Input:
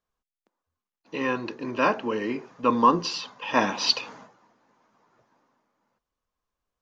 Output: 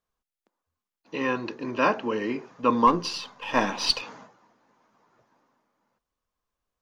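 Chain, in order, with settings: 2.87–4.02 half-wave gain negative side -3 dB

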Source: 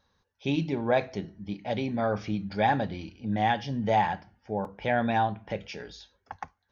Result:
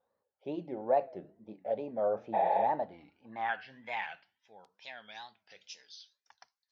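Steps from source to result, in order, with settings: wow and flutter 150 cents; spectral repair 2.36–2.61, 280–3900 Hz after; band-pass sweep 580 Hz -> 5000 Hz, 2.65–4.77

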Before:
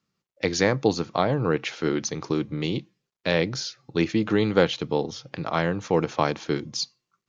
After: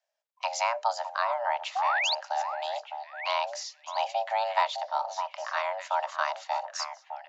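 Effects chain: painted sound rise, 1.75–2.15, 260–4500 Hz -21 dBFS; frequency shift +460 Hz; delay with a stepping band-pass 0.608 s, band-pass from 890 Hz, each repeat 1.4 oct, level -6.5 dB; gain -6.5 dB

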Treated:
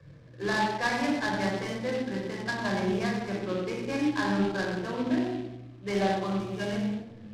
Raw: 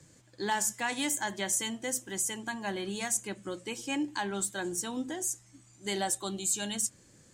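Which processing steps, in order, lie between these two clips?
inverse Chebyshev low-pass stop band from 9100 Hz, stop band 70 dB; on a send: tape echo 91 ms, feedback 51%, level -4.5 dB, low-pass 1400 Hz; on the sum: shoebox room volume 2800 m³, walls furnished, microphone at 5.6 m; noise-modulated delay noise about 2500 Hz, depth 0.042 ms

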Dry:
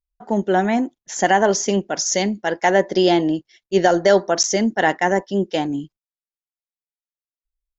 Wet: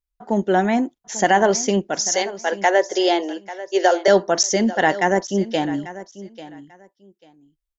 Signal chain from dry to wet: 2.04–4.08 steep high-pass 370 Hz 36 dB/oct; on a send: feedback echo 0.842 s, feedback 20%, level -16 dB

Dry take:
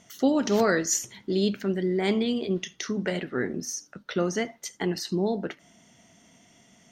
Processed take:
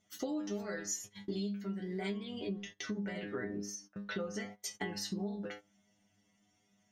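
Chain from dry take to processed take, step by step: low shelf 130 Hz +4 dB; metallic resonator 100 Hz, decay 0.38 s, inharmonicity 0.002; compressor 16:1, threshold -43 dBFS, peak gain reduction 20.5 dB; gate -56 dBFS, range -15 dB; 2.25–4.34 high shelf 5000 Hz -10 dB; gain +8.5 dB

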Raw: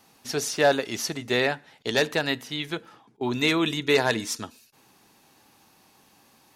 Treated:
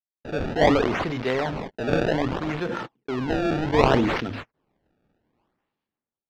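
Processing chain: notches 50/100 Hz; gate -47 dBFS, range -49 dB; dynamic EQ 3300 Hz, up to -5 dB, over -38 dBFS, Q 2; in parallel at -6 dB: companded quantiser 2-bit; on the sum: rotary speaker horn 0.7 Hz, later 6.3 Hz, at 5.12; decimation with a swept rate 25×, swing 160% 0.62 Hz; air absorption 230 m; speed mistake 24 fps film run at 25 fps; sustainer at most 36 dB/s

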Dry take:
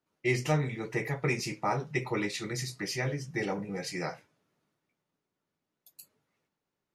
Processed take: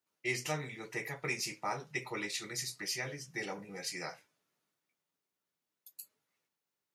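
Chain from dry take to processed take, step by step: tilt +2.5 dB/oct; gain -6 dB

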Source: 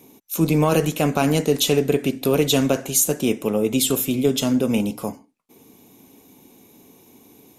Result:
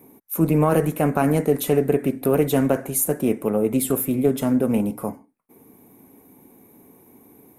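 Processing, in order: band shelf 4400 Hz -15 dB; Doppler distortion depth 0.11 ms

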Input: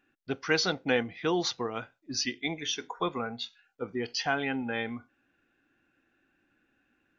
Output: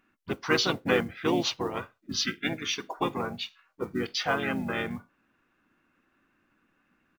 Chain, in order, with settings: harmoniser -7 st -8 dB, -4 st -4 dB; modulation noise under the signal 30 dB

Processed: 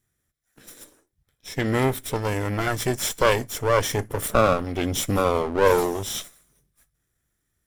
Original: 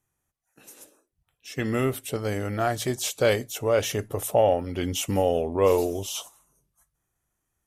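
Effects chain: minimum comb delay 0.54 ms; 2.21–4.27 notch 3800 Hz, Q 9.8; gain +4.5 dB

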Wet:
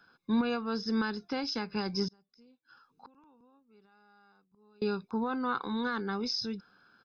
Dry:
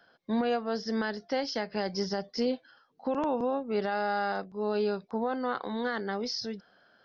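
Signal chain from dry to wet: comb 0.8 ms, depth 80%; 2.08–4.82 flipped gate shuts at -36 dBFS, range -31 dB; gain -2 dB

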